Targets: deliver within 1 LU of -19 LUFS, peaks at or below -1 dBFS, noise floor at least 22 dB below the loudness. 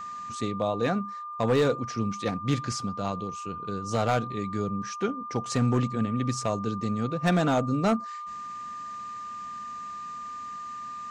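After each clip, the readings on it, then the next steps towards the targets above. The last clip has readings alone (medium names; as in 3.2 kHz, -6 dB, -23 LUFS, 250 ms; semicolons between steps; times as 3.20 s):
clipped samples 0.5%; clipping level -16.5 dBFS; steady tone 1.2 kHz; tone level -35 dBFS; loudness -29.5 LUFS; peak level -16.5 dBFS; loudness target -19.0 LUFS
-> clip repair -16.5 dBFS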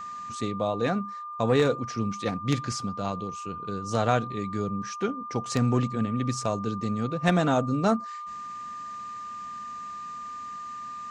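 clipped samples 0.0%; steady tone 1.2 kHz; tone level -35 dBFS
-> band-stop 1.2 kHz, Q 30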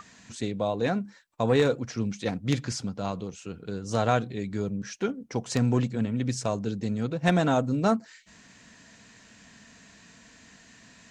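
steady tone not found; loudness -28.0 LUFS; peak level -7.5 dBFS; loudness target -19.0 LUFS
-> trim +9 dB; peak limiter -1 dBFS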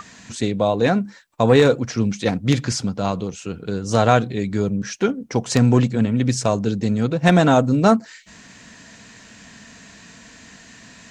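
loudness -19.5 LUFS; peak level -1.0 dBFS; noise floor -46 dBFS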